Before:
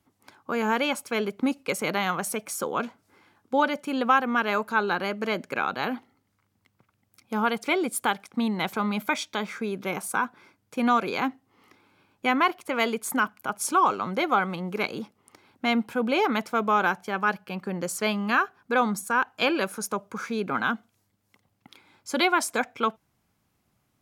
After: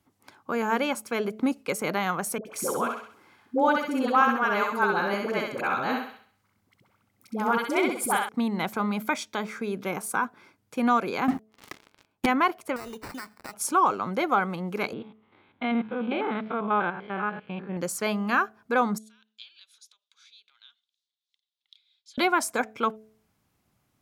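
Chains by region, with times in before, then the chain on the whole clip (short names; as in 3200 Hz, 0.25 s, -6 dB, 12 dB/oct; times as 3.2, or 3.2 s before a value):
2.38–8.29 dispersion highs, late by 74 ms, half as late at 660 Hz + thinning echo 65 ms, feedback 42%, high-pass 290 Hz, level -3.5 dB
11.28–12.26 de-hum 182.4 Hz, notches 6 + dynamic EQ 190 Hz, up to +7 dB, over -50 dBFS, Q 0.94 + sample leveller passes 5
12.76–13.54 compressor 5:1, threshold -36 dBFS + sample-rate reducer 3300 Hz
14.93–17.77 stepped spectrum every 0.1 s + Chebyshev low-pass 3700 Hz, order 5
18.98–22.18 compressor, threshold -32 dBFS + ladder band-pass 3900 Hz, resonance 75%
whole clip: de-hum 217.2 Hz, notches 3; dynamic EQ 3300 Hz, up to -5 dB, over -42 dBFS, Q 1.1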